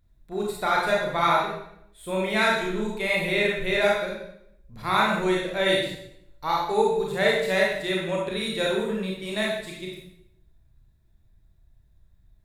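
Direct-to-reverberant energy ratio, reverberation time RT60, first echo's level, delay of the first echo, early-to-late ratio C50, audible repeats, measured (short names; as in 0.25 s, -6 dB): -3.5 dB, 0.75 s, none, none, 0.5 dB, none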